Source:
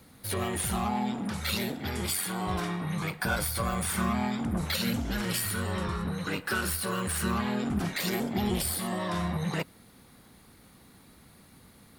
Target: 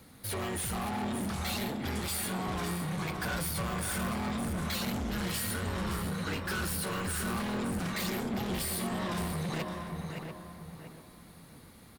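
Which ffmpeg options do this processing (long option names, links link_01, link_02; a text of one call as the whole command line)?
ffmpeg -i in.wav -filter_complex "[0:a]asplit=2[link_01][link_02];[link_02]aecho=0:1:567:0.282[link_03];[link_01][link_03]amix=inputs=2:normalize=0,asoftclip=type=hard:threshold=-32dB,asplit=2[link_04][link_05];[link_05]adelay=689,lowpass=frequency=1700:poles=1,volume=-6dB,asplit=2[link_06][link_07];[link_07]adelay=689,lowpass=frequency=1700:poles=1,volume=0.31,asplit=2[link_08][link_09];[link_09]adelay=689,lowpass=frequency=1700:poles=1,volume=0.31,asplit=2[link_10][link_11];[link_11]adelay=689,lowpass=frequency=1700:poles=1,volume=0.31[link_12];[link_06][link_08][link_10][link_12]amix=inputs=4:normalize=0[link_13];[link_04][link_13]amix=inputs=2:normalize=0" out.wav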